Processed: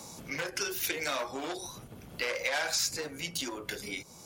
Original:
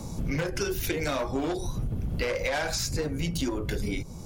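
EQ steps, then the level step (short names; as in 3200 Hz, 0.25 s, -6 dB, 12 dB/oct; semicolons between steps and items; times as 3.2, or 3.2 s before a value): HPF 1200 Hz 6 dB/oct; +1.5 dB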